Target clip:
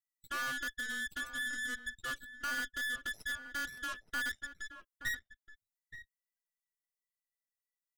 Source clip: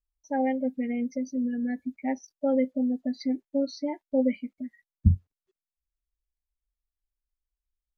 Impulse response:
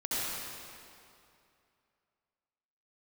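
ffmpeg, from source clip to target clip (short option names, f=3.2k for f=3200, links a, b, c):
-filter_complex "[0:a]afftfilt=real='real(if(between(b,1,1012),(2*floor((b-1)/92)+1)*92-b,b),0)':imag='imag(if(between(b,1,1012),(2*floor((b-1)/92)+1)*92-b,b),0)*if(between(b,1,1012),-1,1)':win_size=2048:overlap=0.75,equalizer=f=1.2k:w=1.4:g=2,aexciter=amount=5.8:drive=8.5:freq=4.3k,acrossover=split=120|2100[a][b][c];[a]aderivative[d];[c]acompressor=threshold=-47dB:ratio=6[e];[d][b][e]amix=inputs=3:normalize=0,asoftclip=type=tanh:threshold=-24dB,aeval=exprs='0.0631*(cos(1*acos(clip(val(0)/0.0631,-1,1)))-cos(1*PI/2))+0.0224*(cos(2*acos(clip(val(0)/0.0631,-1,1)))-cos(2*PI/2))+0.00708*(cos(7*acos(clip(val(0)/0.0631,-1,1)))-cos(7*PI/2))+0.0126*(cos(8*acos(clip(val(0)/0.0631,-1,1)))-cos(8*PI/2))':c=same,asplit=2[f][g];[g]adelay=874.6,volume=-10dB,highshelf=f=4k:g=-19.7[h];[f][h]amix=inputs=2:normalize=0,volume=-8.5dB"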